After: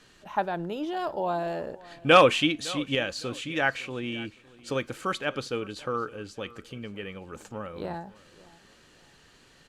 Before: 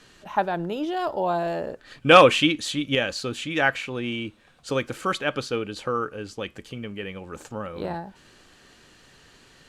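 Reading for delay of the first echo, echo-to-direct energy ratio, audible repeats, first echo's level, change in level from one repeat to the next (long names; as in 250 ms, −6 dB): 559 ms, −20.5 dB, 2, −21.0 dB, −9.5 dB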